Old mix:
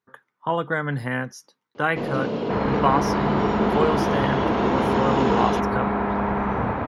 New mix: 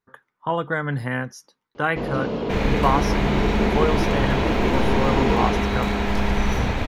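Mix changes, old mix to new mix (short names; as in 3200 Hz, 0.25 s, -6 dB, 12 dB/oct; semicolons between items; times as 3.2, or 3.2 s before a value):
second sound: remove synth low-pass 1200 Hz, resonance Q 1.7; master: remove HPF 110 Hz 12 dB/oct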